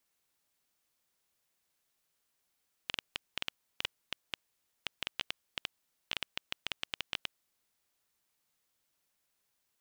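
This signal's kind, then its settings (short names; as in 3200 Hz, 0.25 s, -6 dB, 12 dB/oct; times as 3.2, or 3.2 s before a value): random clicks 6.7/s -15 dBFS 5.10 s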